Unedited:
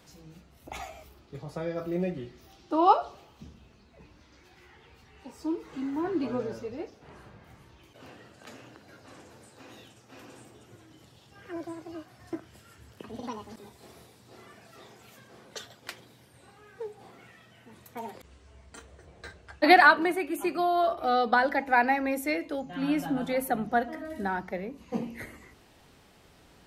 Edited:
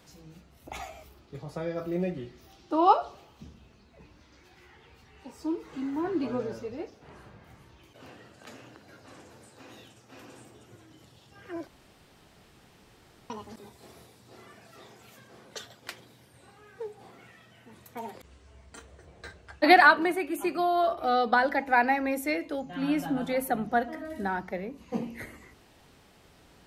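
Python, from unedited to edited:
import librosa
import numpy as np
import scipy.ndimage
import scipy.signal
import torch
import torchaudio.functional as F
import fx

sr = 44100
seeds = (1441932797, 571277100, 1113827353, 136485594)

y = fx.edit(x, sr, fx.room_tone_fill(start_s=11.67, length_s=1.63), tone=tone)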